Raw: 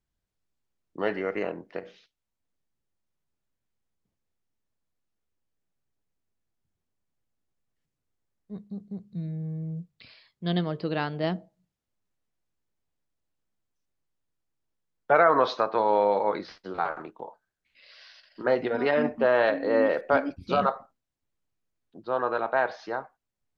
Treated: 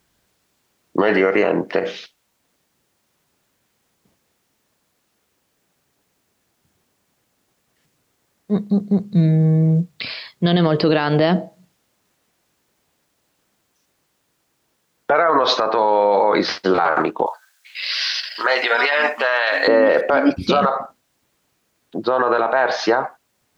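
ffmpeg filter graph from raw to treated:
ffmpeg -i in.wav -filter_complex "[0:a]asettb=1/sr,asplit=3[link_01][link_02][link_03];[link_01]atrim=end=17.264[link_04];[link_02]atrim=start=17.26:end=19.68,asetpts=PTS-STARTPTS,afade=type=in:duration=0.004:curve=qsin,afade=type=out:start_time=2.416:duration=0.004:curve=qsin,highpass=980,highshelf=frequency=2200:gain=9[link_05];[link_03]atrim=start=19.676[link_06];[link_04][link_05]acrossfade=duration=0.004:curve1=hsin:curve2=qsin[link_07];[link_07][link_06]acrossfade=duration=0.004:curve1=qsin:curve2=hsin,highpass=frequency=240:poles=1,acompressor=threshold=-27dB:ratio=6,alimiter=level_in=28.5dB:limit=-1dB:release=50:level=0:latency=1,volume=-5dB" out.wav

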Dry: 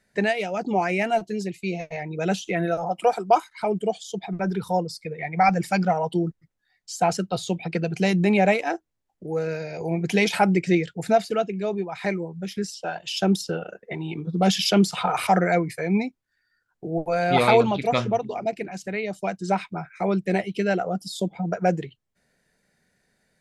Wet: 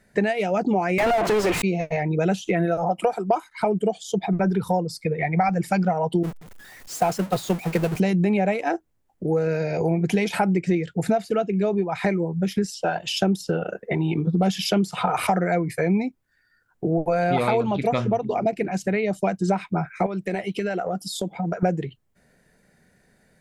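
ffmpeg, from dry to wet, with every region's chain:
ffmpeg -i in.wav -filter_complex "[0:a]asettb=1/sr,asplit=3[link_01][link_02][link_03];[link_01]atrim=end=0.984[link_04];[link_02]atrim=start=0.98:end=1.62,asetpts=PTS-STARTPTS,afade=type=in:duration=0.004:curve=qsin,afade=type=out:start_time=0.636:duration=0.004:curve=qsin,aeval=exprs='val(0)+0.5*0.0188*sgn(val(0))':channel_layout=same,highpass=480,asplit=2[link_05][link_06];[link_06]highpass=frequency=720:poles=1,volume=38dB,asoftclip=type=tanh:threshold=-12.5dB[link_07];[link_05][link_07]amix=inputs=2:normalize=0,lowpass=frequency=1900:poles=1,volume=-6dB[link_08];[link_03]atrim=start=1.616[link_09];[link_04][link_08]acrossfade=duration=0.004:curve1=hsin:curve2=qsin[link_10];[link_10][link_09]acrossfade=duration=0.004:curve1=qsin:curve2=hsin,asettb=1/sr,asplit=3[link_11][link_12][link_13];[link_11]atrim=end=6.234[link_14];[link_12]atrim=start=6.23:end=8,asetpts=PTS-STARTPTS,afade=type=in:duration=0.004:curve=qsin,afade=type=out:start_time=1.766:duration=0.004:curve=qsin,aeval=exprs='val(0)+0.5*0.0596*sgn(val(0))':channel_layout=same,agate=range=-33dB:threshold=-20dB:ratio=3:release=100:detection=peak,equalizer=frequency=88:width=0.35:gain=-5[link_15];[link_13]atrim=start=7.996[link_16];[link_14][link_15]acrossfade=duration=0.004:curve1=hsin:curve2=qsin[link_17];[link_17][link_16]acrossfade=duration=0.004:curve1=qsin:curve2=hsin,asettb=1/sr,asplit=3[link_18][link_19][link_20];[link_18]atrim=end=20.064[link_21];[link_19]atrim=start=20.06:end=21.63,asetpts=PTS-STARTPTS,afade=type=in:duration=0.004:curve=qsin,afade=type=out:start_time=1.566:duration=0.004:curve=qsin,lowshelf=frequency=380:gain=-10,acompressor=threshold=-30dB:ratio=10:attack=3.2:release=140:knee=1:detection=peak[link_22];[link_20]atrim=start=21.626[link_23];[link_21][link_22]acrossfade=duration=0.004:curve1=hsin:curve2=qsin[link_24];[link_24][link_23]acrossfade=duration=0.004:curve1=qsin:curve2=hsin,lowshelf=frequency=480:gain=3.5,acompressor=threshold=-26dB:ratio=6,equalizer=frequency=4500:width=0.72:gain=-5,volume=7.5dB" out.wav

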